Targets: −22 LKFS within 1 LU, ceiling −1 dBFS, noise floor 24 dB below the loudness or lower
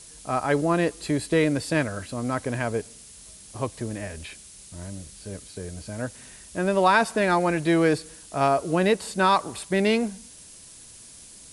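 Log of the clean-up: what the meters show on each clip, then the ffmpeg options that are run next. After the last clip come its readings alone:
background noise floor −47 dBFS; target noise floor −49 dBFS; integrated loudness −24.5 LKFS; sample peak −6.5 dBFS; target loudness −22.0 LKFS
→ -af "afftdn=noise_reduction=6:noise_floor=-47"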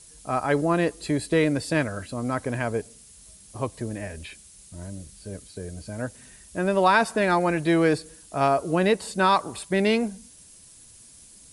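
background noise floor −50 dBFS; integrated loudness −24.5 LKFS; sample peak −6.5 dBFS; target loudness −22.0 LKFS
→ -af "volume=2.5dB"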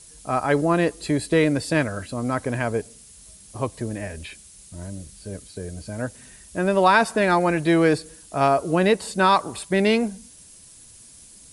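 integrated loudness −22.0 LKFS; sample peak −4.0 dBFS; background noise floor −48 dBFS

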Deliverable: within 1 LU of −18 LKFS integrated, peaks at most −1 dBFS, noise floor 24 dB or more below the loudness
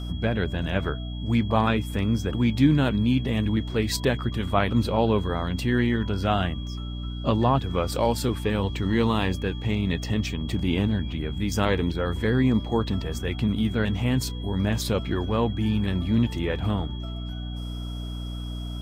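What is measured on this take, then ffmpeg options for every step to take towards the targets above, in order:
mains hum 60 Hz; hum harmonics up to 300 Hz; level of the hum −30 dBFS; interfering tone 3,300 Hz; level of the tone −43 dBFS; integrated loudness −25.5 LKFS; sample peak −6.5 dBFS; target loudness −18.0 LKFS
→ -af "bandreject=frequency=60:width_type=h:width=6,bandreject=frequency=120:width_type=h:width=6,bandreject=frequency=180:width_type=h:width=6,bandreject=frequency=240:width_type=h:width=6,bandreject=frequency=300:width_type=h:width=6"
-af "bandreject=frequency=3300:width=30"
-af "volume=7.5dB,alimiter=limit=-1dB:level=0:latency=1"

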